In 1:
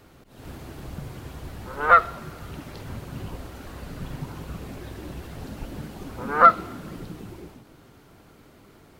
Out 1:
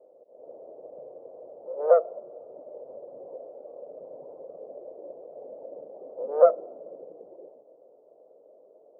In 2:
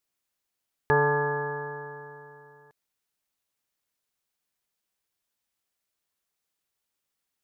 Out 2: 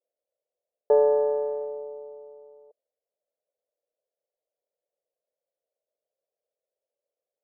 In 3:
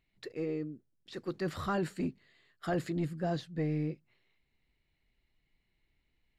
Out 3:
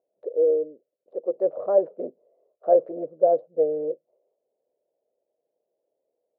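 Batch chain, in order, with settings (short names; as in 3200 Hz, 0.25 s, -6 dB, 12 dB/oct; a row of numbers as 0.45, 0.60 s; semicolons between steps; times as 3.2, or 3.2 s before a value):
Wiener smoothing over 25 samples; Butterworth band-pass 550 Hz, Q 3.3; match loudness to -24 LUFS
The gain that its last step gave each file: +10.0, +14.5, +22.0 dB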